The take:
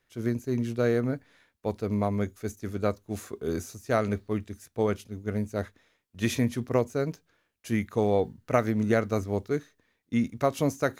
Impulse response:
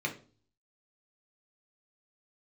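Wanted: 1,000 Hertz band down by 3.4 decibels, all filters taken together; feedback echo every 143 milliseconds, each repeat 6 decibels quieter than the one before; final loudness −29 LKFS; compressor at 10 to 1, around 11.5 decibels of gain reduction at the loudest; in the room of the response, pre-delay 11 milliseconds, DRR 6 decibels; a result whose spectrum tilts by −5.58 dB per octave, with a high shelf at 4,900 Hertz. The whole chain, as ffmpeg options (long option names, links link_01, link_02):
-filter_complex "[0:a]equalizer=frequency=1000:width_type=o:gain=-5.5,highshelf=frequency=4900:gain=6.5,acompressor=threshold=-32dB:ratio=10,aecho=1:1:143|286|429|572|715|858:0.501|0.251|0.125|0.0626|0.0313|0.0157,asplit=2[link_01][link_02];[1:a]atrim=start_sample=2205,adelay=11[link_03];[link_02][link_03]afir=irnorm=-1:irlink=0,volume=-11.5dB[link_04];[link_01][link_04]amix=inputs=2:normalize=0,volume=7.5dB"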